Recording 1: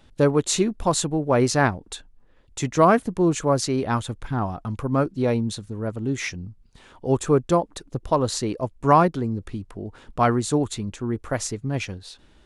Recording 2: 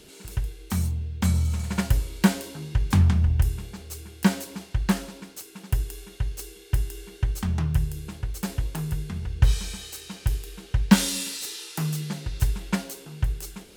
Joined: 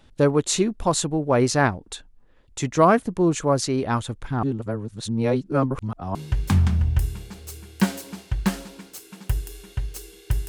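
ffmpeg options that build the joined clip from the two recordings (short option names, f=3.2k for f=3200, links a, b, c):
-filter_complex "[0:a]apad=whole_dur=10.48,atrim=end=10.48,asplit=2[a][b];[a]atrim=end=4.432[c];[b]atrim=start=4.428:end=6.152,asetpts=PTS-STARTPTS,areverse[d];[1:a]atrim=start=2.578:end=6.91[e];[c][d]acrossfade=d=0.004:c1=hsin:c2=hsin[f];[f][e]acrossfade=d=0.004:c1=hsin:c2=hsin"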